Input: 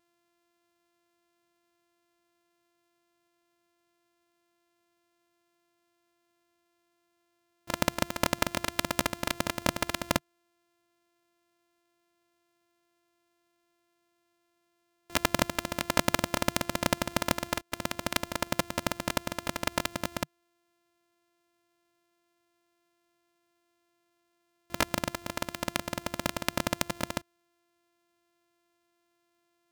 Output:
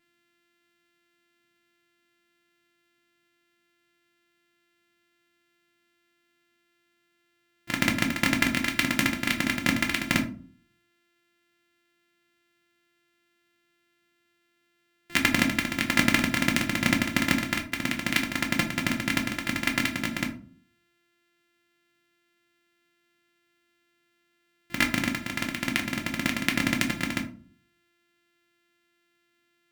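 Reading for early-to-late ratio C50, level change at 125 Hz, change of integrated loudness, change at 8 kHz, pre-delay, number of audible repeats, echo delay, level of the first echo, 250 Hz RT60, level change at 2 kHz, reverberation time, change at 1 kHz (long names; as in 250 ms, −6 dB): 11.5 dB, +5.0 dB, +5.5 dB, +1.0 dB, 5 ms, no echo audible, no echo audible, no echo audible, 0.70 s, +9.0 dB, 0.45 s, −1.0 dB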